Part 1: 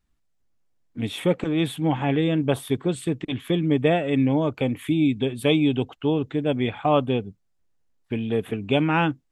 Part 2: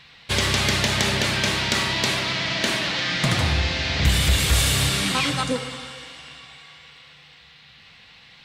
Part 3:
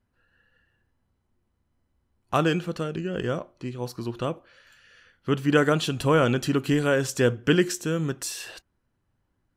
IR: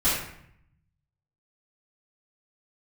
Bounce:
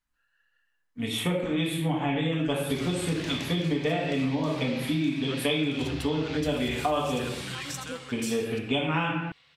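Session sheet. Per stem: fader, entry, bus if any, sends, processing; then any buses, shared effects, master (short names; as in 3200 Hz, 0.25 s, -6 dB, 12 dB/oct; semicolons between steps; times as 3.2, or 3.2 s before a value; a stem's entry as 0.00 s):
0.0 dB, 0.00 s, send -8.5 dB, tilt +2 dB/oct; upward expander 1.5:1, over -50 dBFS
-13.5 dB, 2.40 s, no send, limiter -14.5 dBFS, peak gain reduction 6.5 dB
-6.5 dB, 0.00 s, no send, HPF 1100 Hz 12 dB/oct; negative-ratio compressor -31 dBFS, ratio -0.5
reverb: on, RT60 0.70 s, pre-delay 4 ms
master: compressor 6:1, threshold -24 dBFS, peak gain reduction 12.5 dB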